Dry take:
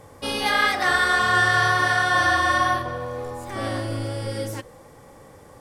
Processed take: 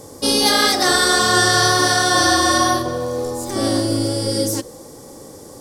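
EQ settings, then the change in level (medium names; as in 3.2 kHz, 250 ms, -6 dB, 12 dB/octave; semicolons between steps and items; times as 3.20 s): peaking EQ 320 Hz +11.5 dB 1.7 oct; resonant high shelf 3.5 kHz +13 dB, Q 1.5; +1.5 dB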